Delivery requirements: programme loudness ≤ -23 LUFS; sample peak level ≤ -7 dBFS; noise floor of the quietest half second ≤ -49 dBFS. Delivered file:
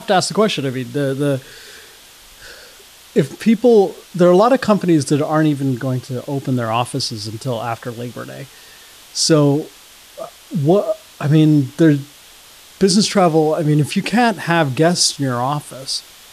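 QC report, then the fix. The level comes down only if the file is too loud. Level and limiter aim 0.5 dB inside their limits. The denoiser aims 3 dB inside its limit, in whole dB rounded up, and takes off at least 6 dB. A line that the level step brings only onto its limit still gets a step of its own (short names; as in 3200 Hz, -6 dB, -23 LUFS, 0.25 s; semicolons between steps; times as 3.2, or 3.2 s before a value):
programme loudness -16.5 LUFS: fail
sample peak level -3.0 dBFS: fail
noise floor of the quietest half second -43 dBFS: fail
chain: gain -7 dB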